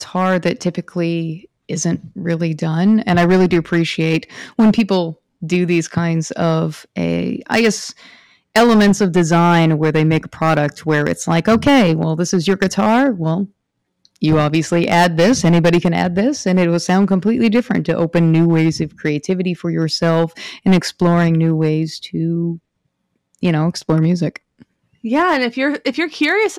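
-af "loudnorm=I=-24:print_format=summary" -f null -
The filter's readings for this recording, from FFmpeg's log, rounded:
Input Integrated:    -16.0 LUFS
Input True Peak:      -6.3 dBTP
Input LRA:             4.0 LU
Input Threshold:     -26.4 LUFS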